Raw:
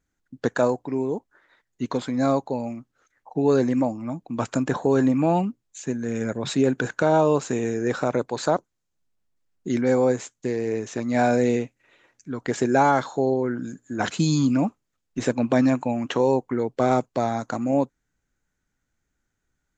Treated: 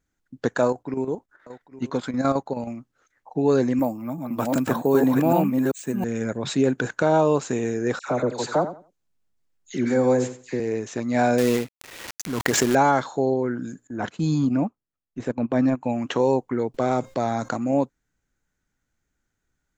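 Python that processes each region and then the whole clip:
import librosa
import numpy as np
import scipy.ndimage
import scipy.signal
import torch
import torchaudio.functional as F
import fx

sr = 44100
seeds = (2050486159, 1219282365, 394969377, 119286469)

y = fx.chain(x, sr, fx.peak_eq(hz=1400.0, db=6.5, octaves=0.42),
    fx.echo_single(ms=813, db=-16.5),
    fx.chopper(hz=9.4, depth_pct=60, duty_pct=70), at=(0.65, 2.71))
y = fx.chain(y, sr, fx.reverse_delay(ms=385, wet_db=-2),
    fx.highpass(hz=110.0, slope=12),
    fx.resample_bad(factor=3, down='none', up='hold'), at=(3.79, 6.04))
y = fx.chain(y, sr, fx.dispersion(late='lows', ms=85.0, hz=1500.0),
    fx.echo_feedback(ms=87, feedback_pct=21, wet_db=-12), at=(7.99, 10.6))
y = fx.chain(y, sr, fx.low_shelf(hz=100.0, db=-3.5),
    fx.quant_companded(bits=4),
    fx.pre_swell(db_per_s=38.0), at=(11.38, 12.75))
y = fx.chain(y, sr, fx.transient(attack_db=-5, sustain_db=-11),
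    fx.high_shelf(hz=2700.0, db=-11.5), at=(13.87, 15.84))
y = fx.chain(y, sr, fx.comb_fb(f0_hz=530.0, decay_s=0.32, harmonics='all', damping=0.0, mix_pct=30),
    fx.env_flatten(amount_pct=50), at=(16.74, 17.53))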